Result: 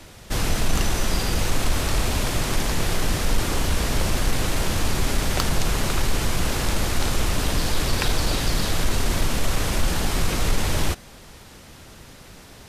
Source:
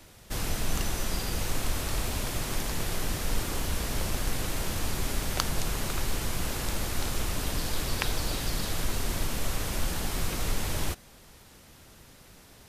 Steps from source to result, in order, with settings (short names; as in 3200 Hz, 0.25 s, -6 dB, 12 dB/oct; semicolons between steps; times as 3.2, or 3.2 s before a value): soft clip -17.5 dBFS, distortion -23 dB; high shelf 12000 Hz -10.5 dB; gain +9 dB